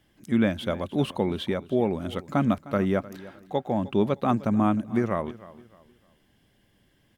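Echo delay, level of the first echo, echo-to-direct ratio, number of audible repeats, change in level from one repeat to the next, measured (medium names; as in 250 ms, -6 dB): 307 ms, -18.5 dB, -18.0 dB, 2, -10.0 dB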